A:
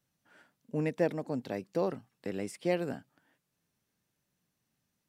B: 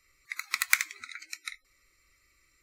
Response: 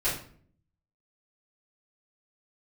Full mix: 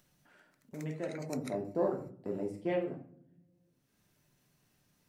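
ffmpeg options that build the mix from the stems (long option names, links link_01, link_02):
-filter_complex "[0:a]afwtdn=0.00708,volume=-4.5dB,afade=type=in:start_time=1.04:duration=0.47:silence=0.334965,afade=type=out:start_time=2.62:duration=0.33:silence=0.298538,asplit=3[link_01][link_02][link_03];[link_02]volume=-8dB[link_04];[1:a]equalizer=frequency=3000:width_type=o:width=1.7:gain=-8.5,acompressor=threshold=-40dB:ratio=10,volume=-2.5dB[link_05];[link_03]apad=whole_len=115740[link_06];[link_05][link_06]sidechaingate=range=-56dB:threshold=-56dB:ratio=16:detection=peak[link_07];[2:a]atrim=start_sample=2205[link_08];[link_04][link_08]afir=irnorm=-1:irlink=0[link_09];[link_01][link_07][link_09]amix=inputs=3:normalize=0,acompressor=mode=upward:threshold=-44dB:ratio=2.5"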